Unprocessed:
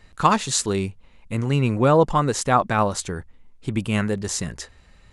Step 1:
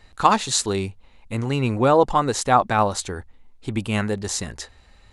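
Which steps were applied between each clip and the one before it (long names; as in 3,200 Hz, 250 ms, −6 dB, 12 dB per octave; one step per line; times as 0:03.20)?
thirty-one-band graphic EQ 160 Hz −10 dB, 800 Hz +5 dB, 4,000 Hz +4 dB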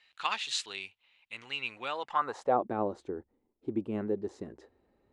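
band-pass filter sweep 2,800 Hz → 350 Hz, 0:02.00–0:02.62
level −1.5 dB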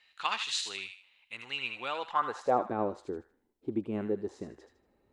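delay with a high-pass on its return 78 ms, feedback 32%, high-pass 1,400 Hz, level −6 dB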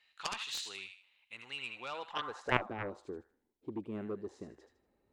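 harmonic generator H 3 −6 dB, 5 −31 dB, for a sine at −13 dBFS
level +3.5 dB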